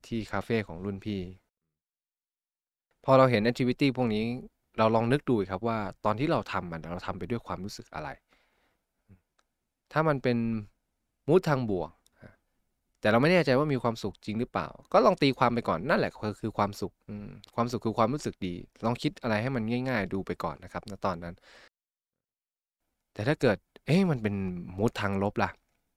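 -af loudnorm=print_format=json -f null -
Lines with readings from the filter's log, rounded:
"input_i" : "-28.9",
"input_tp" : "-7.0",
"input_lra" : "7.7",
"input_thresh" : "-39.6",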